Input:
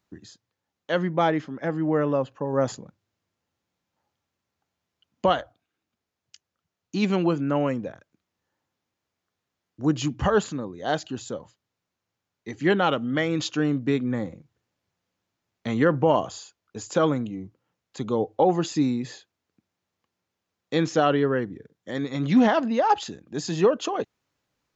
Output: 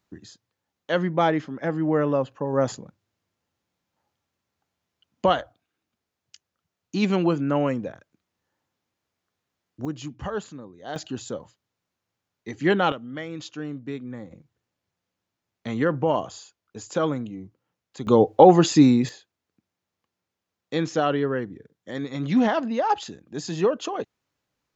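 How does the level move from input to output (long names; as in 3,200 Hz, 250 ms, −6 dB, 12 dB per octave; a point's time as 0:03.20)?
+1 dB
from 0:09.85 −9 dB
from 0:10.96 +0.5 dB
from 0:12.92 −9.5 dB
from 0:14.31 −2.5 dB
from 0:18.07 +8 dB
from 0:19.09 −2 dB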